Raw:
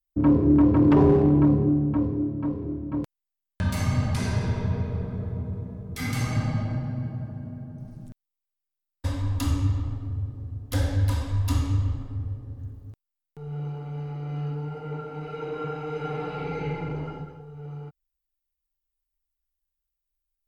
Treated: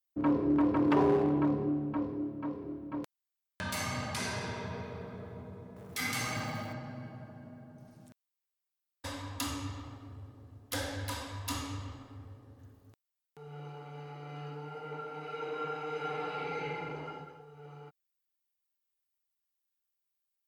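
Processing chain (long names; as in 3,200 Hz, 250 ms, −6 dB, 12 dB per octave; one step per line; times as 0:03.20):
0:05.76–0:06.73: mu-law and A-law mismatch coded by mu
high-pass filter 780 Hz 6 dB per octave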